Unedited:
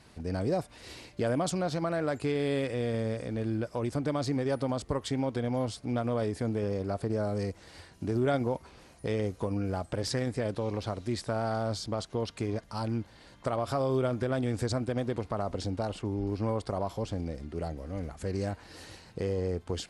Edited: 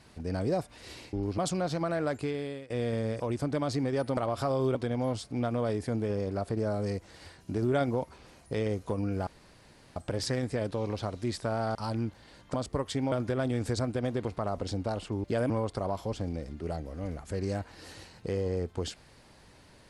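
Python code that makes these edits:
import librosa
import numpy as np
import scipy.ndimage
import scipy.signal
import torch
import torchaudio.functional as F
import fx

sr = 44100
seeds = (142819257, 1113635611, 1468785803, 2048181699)

y = fx.edit(x, sr, fx.swap(start_s=1.13, length_s=0.26, other_s=16.17, other_length_s=0.25),
    fx.fade_out_to(start_s=2.12, length_s=0.59, floor_db=-22.5),
    fx.cut(start_s=3.21, length_s=0.52),
    fx.swap(start_s=4.7, length_s=0.58, other_s=13.47, other_length_s=0.58),
    fx.insert_room_tone(at_s=9.8, length_s=0.69),
    fx.cut(start_s=11.59, length_s=1.09), tone=tone)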